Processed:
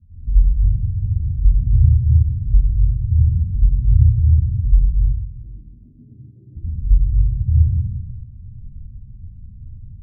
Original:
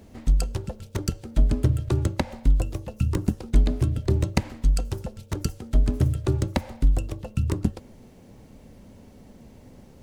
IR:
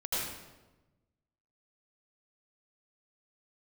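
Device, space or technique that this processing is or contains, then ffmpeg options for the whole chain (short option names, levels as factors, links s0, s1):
club heard from the street: -filter_complex "[0:a]asettb=1/sr,asplit=3[s0][s1][s2];[s0]atrim=end=4.934[s3];[s1]atrim=start=4.93:end=6.55,asetpts=PTS-STARTPTS,afade=t=in:d=0.004:c=qsin,afade=t=out:st=1.616:d=0.004:c=qsin,highpass=f=280:w=0.5412,highpass=f=280:w=1.3066[s4];[s2]atrim=start=6.546[s5];[s3][s4]acrossfade=d=0.004:c1=hsin:c2=qsin[s6];[s6][s5]acrossfade=d=0.004:c1=qsin:c2=hsin,alimiter=limit=0.133:level=0:latency=1:release=306,lowpass=f=120:w=0.5412,lowpass=f=120:w=1.3066[s7];[1:a]atrim=start_sample=2205[s8];[s7][s8]afir=irnorm=-1:irlink=0,volume=2.37"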